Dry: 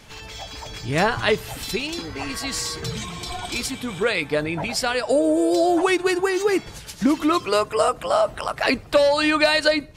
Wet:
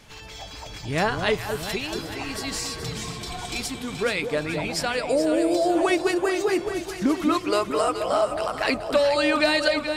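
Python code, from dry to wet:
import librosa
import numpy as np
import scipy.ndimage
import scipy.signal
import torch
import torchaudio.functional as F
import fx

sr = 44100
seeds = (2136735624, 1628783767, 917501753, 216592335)

y = fx.echo_alternate(x, sr, ms=214, hz=830.0, feedback_pct=72, wet_db=-6.0)
y = y * 10.0 ** (-3.5 / 20.0)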